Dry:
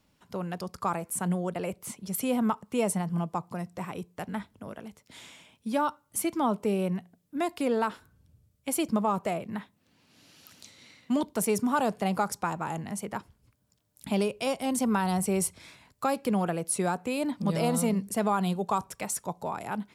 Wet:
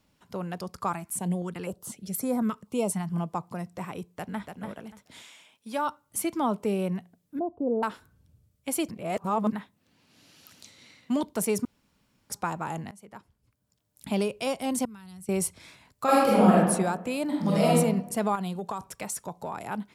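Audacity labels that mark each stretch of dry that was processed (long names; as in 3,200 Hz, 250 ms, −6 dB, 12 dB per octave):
0.920000	3.120000	notch on a step sequencer 4 Hz 490–2,900 Hz
4.060000	4.520000	delay throw 290 ms, feedback 20%, level −5.5 dB
5.210000	5.850000	high-pass filter 970 Hz → 450 Hz 6 dB per octave
7.390000	7.830000	inverse Chebyshev low-pass filter stop band from 1,900 Hz, stop band 50 dB
8.910000	9.520000	reverse
11.650000	12.300000	fill with room tone
12.910000	14.120000	fade in, from −19.5 dB
14.850000	15.290000	guitar amp tone stack bass-middle-treble 6-0-2
16.040000	16.530000	thrown reverb, RT60 1.2 s, DRR −8.5 dB
17.240000	17.730000	thrown reverb, RT60 0.87 s, DRR −3 dB
18.350000	19.630000	downward compressor, threshold −28 dBFS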